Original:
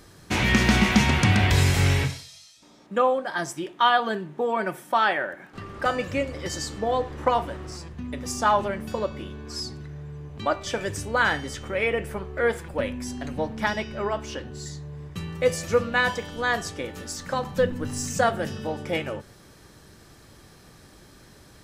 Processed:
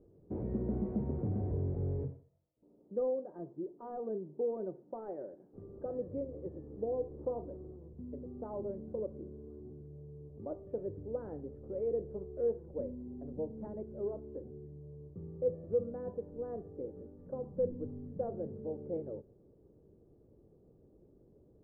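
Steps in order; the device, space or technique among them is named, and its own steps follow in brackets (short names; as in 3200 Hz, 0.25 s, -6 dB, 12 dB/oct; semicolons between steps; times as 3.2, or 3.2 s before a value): overdriven synthesiser ladder filter (soft clip -15 dBFS, distortion -16 dB; ladder low-pass 530 Hz, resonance 50%); gain -3.5 dB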